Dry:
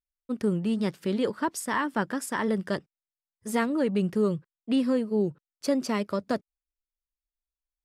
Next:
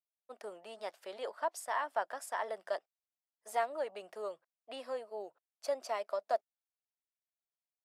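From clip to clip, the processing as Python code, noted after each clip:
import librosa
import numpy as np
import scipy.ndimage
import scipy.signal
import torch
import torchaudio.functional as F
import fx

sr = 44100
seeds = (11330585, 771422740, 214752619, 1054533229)

y = fx.ladder_highpass(x, sr, hz=620.0, resonance_pct=70)
y = y * librosa.db_to_amplitude(1.0)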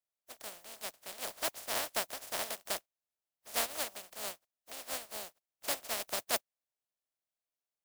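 y = fx.spec_flatten(x, sr, power=0.12)
y = fx.peak_eq(y, sr, hz=630.0, db=9.0, octaves=0.66)
y = y * librosa.db_to_amplitude(-1.0)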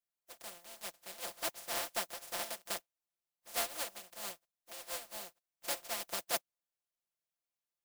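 y = x + 0.89 * np.pad(x, (int(5.8 * sr / 1000.0), 0))[:len(x)]
y = y * librosa.db_to_amplitude(-5.0)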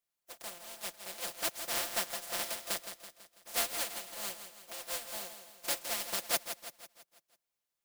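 y = fx.dynamic_eq(x, sr, hz=770.0, q=0.77, threshold_db=-49.0, ratio=4.0, max_db=-4)
y = fx.echo_feedback(y, sr, ms=165, feedback_pct=50, wet_db=-9.5)
y = y * librosa.db_to_amplitude(4.0)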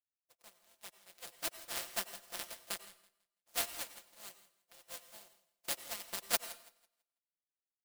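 y = fx.power_curve(x, sr, exponent=2.0)
y = fx.rev_plate(y, sr, seeds[0], rt60_s=0.55, hf_ratio=0.9, predelay_ms=80, drr_db=13.5)
y = y * librosa.db_to_amplitude(6.5)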